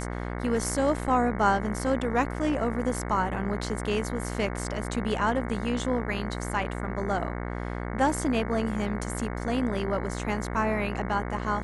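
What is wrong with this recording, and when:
buzz 60 Hz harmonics 37 -33 dBFS

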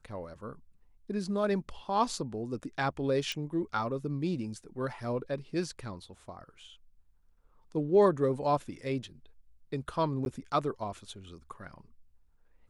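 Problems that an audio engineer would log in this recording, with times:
3.32 pop -21 dBFS
10.25–10.26 gap

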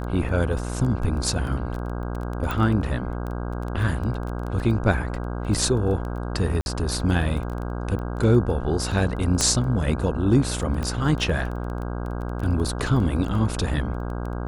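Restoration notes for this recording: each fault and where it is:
buzz 60 Hz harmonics 27 -29 dBFS
crackle 11/s -29 dBFS
2.51 pop
6.61–6.66 gap 51 ms
9.41 pop -8 dBFS
10.83 pop -16 dBFS

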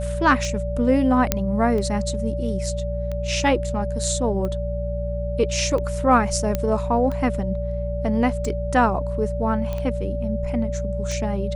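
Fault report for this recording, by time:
hum 60 Hz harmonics 3 -27 dBFS
tick 45 rpm -18 dBFS
tone 580 Hz -28 dBFS
1.32 pop -2 dBFS
6.55 pop -9 dBFS
9.73 pop -16 dBFS

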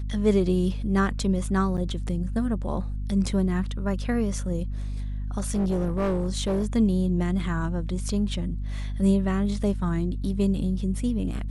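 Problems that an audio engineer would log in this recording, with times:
hum 50 Hz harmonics 5 -30 dBFS
1.77–1.78 gap 7.9 ms
5.38–6.66 clipped -20.5 dBFS

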